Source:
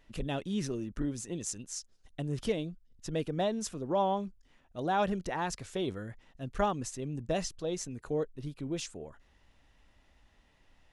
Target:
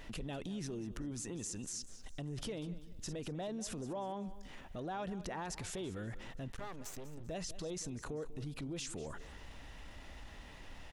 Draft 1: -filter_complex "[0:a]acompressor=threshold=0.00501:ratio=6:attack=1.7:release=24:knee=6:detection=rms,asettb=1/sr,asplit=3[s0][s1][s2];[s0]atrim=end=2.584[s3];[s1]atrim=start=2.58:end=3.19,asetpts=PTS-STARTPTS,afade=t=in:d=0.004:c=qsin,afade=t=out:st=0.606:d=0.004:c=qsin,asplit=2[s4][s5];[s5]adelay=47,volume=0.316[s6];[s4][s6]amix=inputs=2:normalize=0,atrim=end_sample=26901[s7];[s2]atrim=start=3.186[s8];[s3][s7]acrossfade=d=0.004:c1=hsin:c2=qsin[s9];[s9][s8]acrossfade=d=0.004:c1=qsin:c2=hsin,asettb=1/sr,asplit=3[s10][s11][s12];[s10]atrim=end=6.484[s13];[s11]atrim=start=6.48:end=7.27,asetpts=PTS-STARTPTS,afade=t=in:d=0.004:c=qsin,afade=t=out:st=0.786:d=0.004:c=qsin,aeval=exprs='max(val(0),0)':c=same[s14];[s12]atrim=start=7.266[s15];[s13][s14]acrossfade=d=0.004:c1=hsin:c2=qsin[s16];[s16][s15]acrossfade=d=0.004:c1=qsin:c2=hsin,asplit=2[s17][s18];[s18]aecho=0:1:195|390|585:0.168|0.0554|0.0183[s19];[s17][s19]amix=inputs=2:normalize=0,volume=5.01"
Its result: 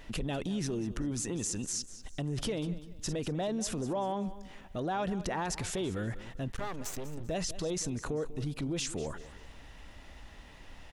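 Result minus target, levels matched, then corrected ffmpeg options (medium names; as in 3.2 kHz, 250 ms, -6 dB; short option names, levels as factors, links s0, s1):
compression: peak gain reduction -8 dB
-filter_complex "[0:a]acompressor=threshold=0.00168:ratio=6:attack=1.7:release=24:knee=6:detection=rms,asettb=1/sr,asplit=3[s0][s1][s2];[s0]atrim=end=2.584[s3];[s1]atrim=start=2.58:end=3.19,asetpts=PTS-STARTPTS,afade=t=in:d=0.004:c=qsin,afade=t=out:st=0.606:d=0.004:c=qsin,asplit=2[s4][s5];[s5]adelay=47,volume=0.316[s6];[s4][s6]amix=inputs=2:normalize=0,atrim=end_sample=26901[s7];[s2]atrim=start=3.186[s8];[s3][s7]acrossfade=d=0.004:c1=hsin:c2=qsin[s9];[s9][s8]acrossfade=d=0.004:c1=qsin:c2=hsin,asettb=1/sr,asplit=3[s10][s11][s12];[s10]atrim=end=6.484[s13];[s11]atrim=start=6.48:end=7.27,asetpts=PTS-STARTPTS,afade=t=in:d=0.004:c=qsin,afade=t=out:st=0.786:d=0.004:c=qsin,aeval=exprs='max(val(0),0)':c=same[s14];[s12]atrim=start=7.266[s15];[s13][s14]acrossfade=d=0.004:c1=hsin:c2=qsin[s16];[s16][s15]acrossfade=d=0.004:c1=qsin:c2=hsin,asplit=2[s17][s18];[s18]aecho=0:1:195|390|585:0.168|0.0554|0.0183[s19];[s17][s19]amix=inputs=2:normalize=0,volume=5.01"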